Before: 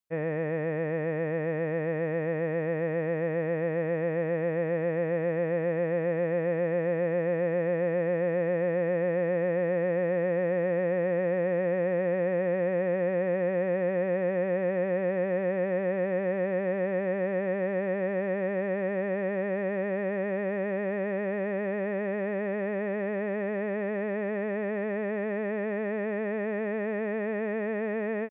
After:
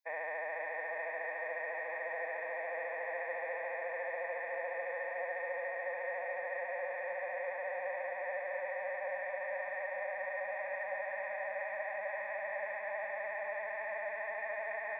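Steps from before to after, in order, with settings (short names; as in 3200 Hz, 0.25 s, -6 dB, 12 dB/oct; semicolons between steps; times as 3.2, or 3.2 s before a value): HPF 660 Hz 24 dB/oct; fixed phaser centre 2000 Hz, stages 8; diffused feedback echo 0.955 s, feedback 58%, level -4 dB; vocal rider within 3 dB; on a send at -19.5 dB: reverb RT60 0.25 s, pre-delay 0.105 s; on the sum: time stretch by phase-locked vocoder 0.53×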